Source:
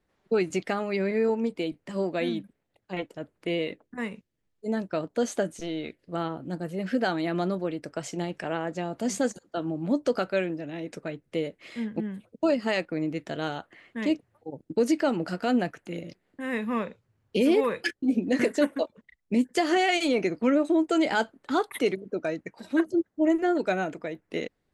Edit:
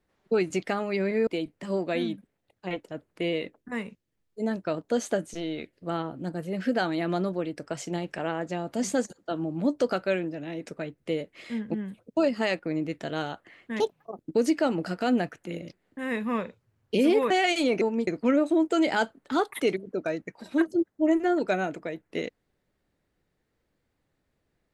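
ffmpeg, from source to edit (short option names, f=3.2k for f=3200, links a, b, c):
-filter_complex "[0:a]asplit=7[a][b][c][d][e][f][g];[a]atrim=end=1.272[h];[b]atrim=start=1.528:end=14.064[i];[c]atrim=start=14.06:end=14.6,asetpts=PTS-STARTPTS,asetrate=62181,aresample=44100,atrim=end_sample=16889,asetpts=PTS-STARTPTS[j];[d]atrim=start=14.596:end=17.722[k];[e]atrim=start=19.748:end=20.262[l];[f]atrim=start=1.268:end=1.532[m];[g]atrim=start=20.258[n];[h][i]acrossfade=d=0.004:c1=hsin:c2=hsin[o];[o][j]acrossfade=d=0.004:c1=hsin:c2=hsin[p];[p][k]acrossfade=d=0.004:c1=hsin:c2=hsin[q];[q][l]acrossfade=d=0.004:c1=hsin:c2=hsin[r];[r][m]acrossfade=d=0.004:c1=hsin:c2=hsin[s];[s][n]acrossfade=d=0.004:c1=hsin:c2=hsin"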